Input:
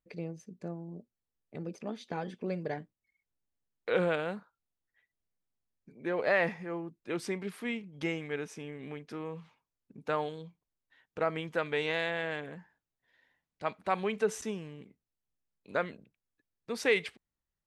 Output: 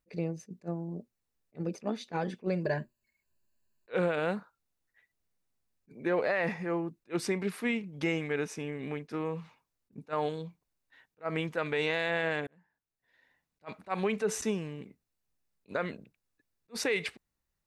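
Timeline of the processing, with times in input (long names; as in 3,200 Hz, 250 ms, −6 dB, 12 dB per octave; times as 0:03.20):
0:02.64–0:03.90: EQ curve with evenly spaced ripples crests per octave 1.4, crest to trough 13 dB
0:12.47–0:13.66: fade in
whole clip: notch filter 3,200 Hz, Q 13; brickwall limiter −26 dBFS; level that may rise only so fast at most 460 dB per second; level +5.5 dB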